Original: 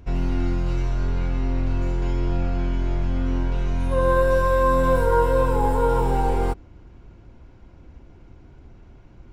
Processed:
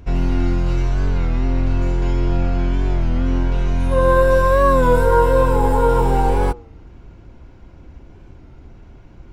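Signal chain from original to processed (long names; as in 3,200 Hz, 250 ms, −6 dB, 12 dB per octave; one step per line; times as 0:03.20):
hum removal 119.2 Hz, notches 11
wow of a warped record 33 1/3 rpm, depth 100 cents
level +5 dB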